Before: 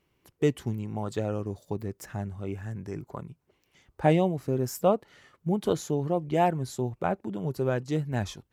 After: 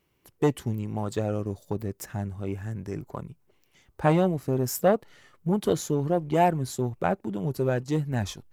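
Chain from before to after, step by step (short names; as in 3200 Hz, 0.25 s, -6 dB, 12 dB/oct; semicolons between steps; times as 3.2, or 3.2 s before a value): high shelf 8600 Hz +7 dB; in parallel at -7 dB: backlash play -35.5 dBFS; on the sum: core saturation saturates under 650 Hz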